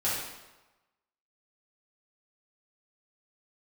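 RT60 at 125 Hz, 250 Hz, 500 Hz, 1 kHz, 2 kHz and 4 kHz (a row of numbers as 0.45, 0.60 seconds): 0.95, 0.95, 1.1, 1.1, 0.95, 0.85 seconds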